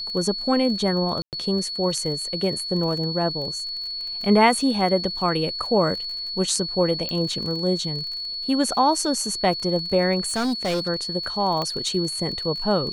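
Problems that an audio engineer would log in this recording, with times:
crackle 29 per s -31 dBFS
whine 4.4 kHz -28 dBFS
1.22–1.33 s: dropout 108 ms
7.09 s: pop -14 dBFS
10.26–10.89 s: clipped -20.5 dBFS
11.62 s: pop -14 dBFS

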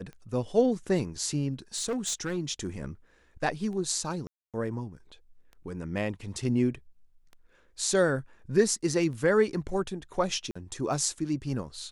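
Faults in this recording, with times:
tick 33 1/3 rpm -33 dBFS
1.75–2.38 s: clipped -26 dBFS
4.27–4.54 s: dropout 267 ms
10.51–10.55 s: dropout 45 ms

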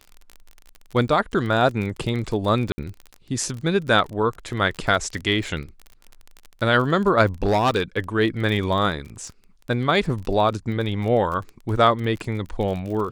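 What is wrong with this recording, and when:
crackle 33 per s -29 dBFS
2.72–2.78 s: dropout 60 ms
7.43–7.82 s: clipped -14.5 dBFS

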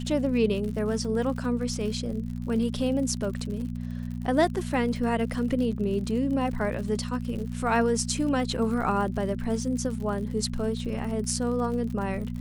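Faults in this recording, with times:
crackle 68 per s -35 dBFS
hum 60 Hz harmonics 4 -33 dBFS

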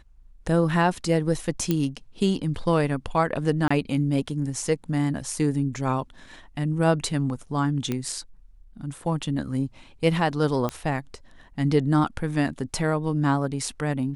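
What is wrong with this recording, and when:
1.71 s: pop -10 dBFS
3.68–3.71 s: dropout 25 ms
7.92 s: pop -14 dBFS
10.69 s: pop -14 dBFS

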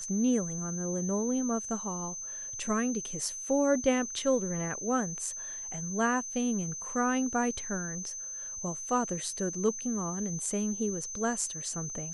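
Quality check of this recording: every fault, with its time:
whine 6.2 kHz -37 dBFS

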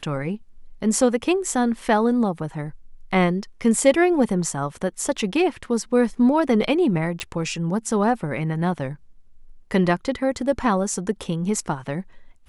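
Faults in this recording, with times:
7.20 s: pop -13 dBFS

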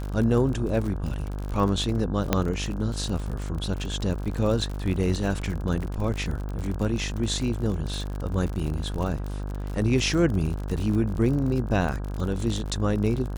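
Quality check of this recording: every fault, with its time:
buzz 50 Hz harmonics 33 -31 dBFS
crackle 55 per s -30 dBFS
2.33 s: pop -6 dBFS

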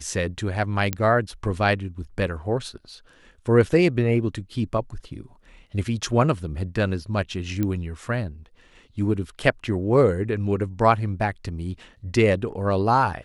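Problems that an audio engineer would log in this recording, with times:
0.93 s: pop -8 dBFS
7.63 s: pop -13 dBFS

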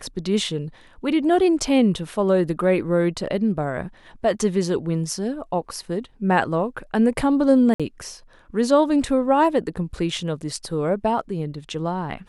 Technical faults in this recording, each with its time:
7.74–7.80 s: dropout 56 ms

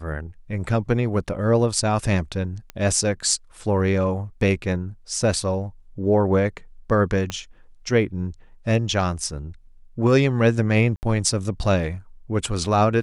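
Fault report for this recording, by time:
2.70 s: pop -18 dBFS
7.30 s: pop -13 dBFS
10.96–11.03 s: dropout 69 ms

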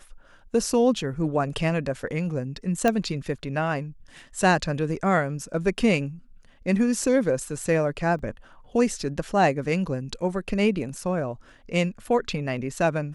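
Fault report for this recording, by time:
2.88 s: pop -9 dBFS
8.19 s: dropout 2.5 ms

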